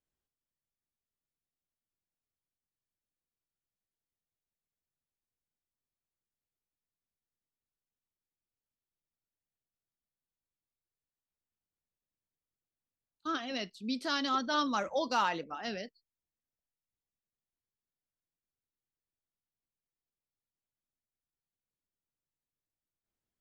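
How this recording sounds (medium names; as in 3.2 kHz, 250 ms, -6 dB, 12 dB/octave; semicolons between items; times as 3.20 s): noise floor -95 dBFS; spectral tilt -3.0 dB/octave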